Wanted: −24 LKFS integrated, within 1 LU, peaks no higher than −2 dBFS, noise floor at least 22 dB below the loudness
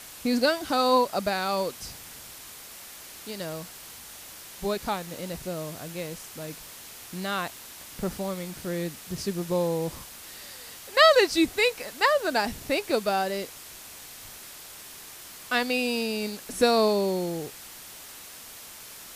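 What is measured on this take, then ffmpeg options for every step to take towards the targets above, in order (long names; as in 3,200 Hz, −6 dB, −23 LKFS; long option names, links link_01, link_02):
background noise floor −45 dBFS; target noise floor −49 dBFS; integrated loudness −26.5 LKFS; sample peak −6.5 dBFS; target loudness −24.0 LKFS
→ -af "afftdn=noise_reduction=6:noise_floor=-45"
-af "volume=2.5dB"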